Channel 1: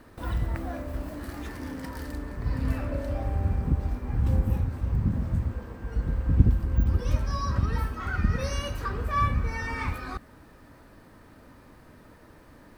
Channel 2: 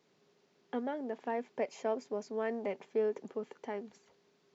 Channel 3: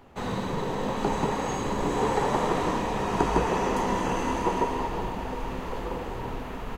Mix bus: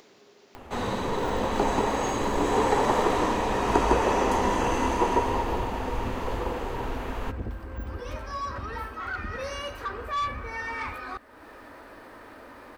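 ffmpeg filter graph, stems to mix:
-filter_complex "[0:a]bass=f=250:g=-14,treble=f=4k:g=-8,asoftclip=type=tanh:threshold=-26.5dB,adelay=1000,volume=2.5dB[a];[1:a]volume=-7dB[b];[2:a]adelay=550,volume=2.5dB[c];[a][b][c]amix=inputs=3:normalize=0,equalizer=f=160:w=3.2:g=-12.5,acompressor=mode=upward:threshold=-37dB:ratio=2.5"

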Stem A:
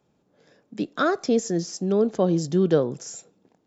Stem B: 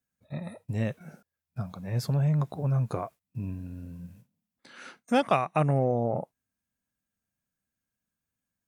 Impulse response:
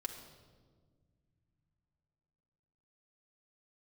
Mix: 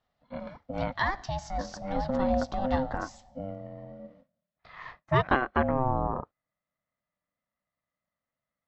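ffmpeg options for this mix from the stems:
-filter_complex "[0:a]crystalizer=i=9.5:c=0,volume=-13.5dB,asplit=2[a][b];[b]volume=-9.5dB[c];[1:a]volume=2dB[d];[2:a]atrim=start_sample=2205[e];[c][e]afir=irnorm=-1:irlink=0[f];[a][d][f]amix=inputs=3:normalize=0,highpass=140,equalizer=f=340:t=q:w=4:g=9,equalizer=f=590:t=q:w=4:g=-5,equalizer=f=960:t=q:w=4:g=3,equalizer=f=1.5k:t=q:w=4:g=7,equalizer=f=2.5k:t=q:w=4:g=-8,lowpass=f=3.8k:w=0.5412,lowpass=f=3.8k:w=1.3066,aeval=exprs='val(0)*sin(2*PI*390*n/s)':c=same"

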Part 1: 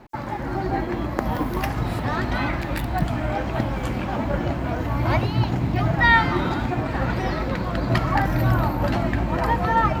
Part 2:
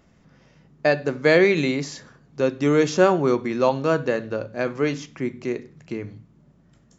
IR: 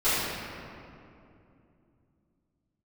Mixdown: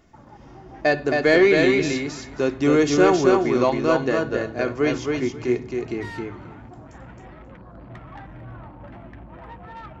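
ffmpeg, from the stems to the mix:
-filter_complex "[0:a]afwtdn=0.0251,lowpass=f=10k:w=0.5412,lowpass=f=10k:w=1.3066,asoftclip=type=tanh:threshold=-16dB,volume=-17dB[a];[1:a]aecho=1:1:2.8:0.39,acontrast=38,volume=-5dB,asplit=2[b][c];[c]volume=-3.5dB,aecho=0:1:268|536|804:1|0.16|0.0256[d];[a][b][d]amix=inputs=3:normalize=0"

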